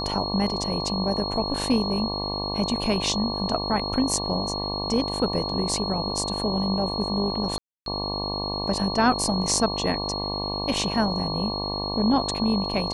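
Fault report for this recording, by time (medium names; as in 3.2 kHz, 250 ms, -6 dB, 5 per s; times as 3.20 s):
buzz 50 Hz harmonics 23 -31 dBFS
whine 4.3 kHz -30 dBFS
7.58–7.86 s: dropout 282 ms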